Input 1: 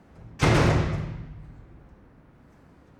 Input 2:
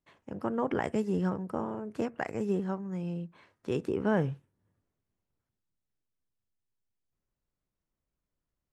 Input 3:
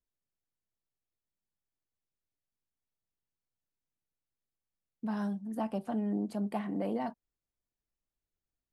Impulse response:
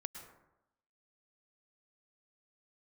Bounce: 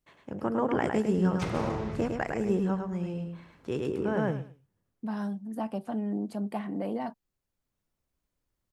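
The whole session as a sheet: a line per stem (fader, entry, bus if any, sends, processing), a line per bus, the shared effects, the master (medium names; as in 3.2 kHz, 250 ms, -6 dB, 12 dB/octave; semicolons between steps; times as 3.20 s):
-7.0 dB, 1.00 s, no send, no echo send, compression 6:1, threshold -25 dBFS, peak gain reduction 9 dB
+2.0 dB, 0.00 s, no send, echo send -4.5 dB, auto duck -12 dB, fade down 1.75 s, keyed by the third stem
+1.0 dB, 0.00 s, no send, no echo send, none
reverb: none
echo: feedback delay 106 ms, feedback 21%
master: none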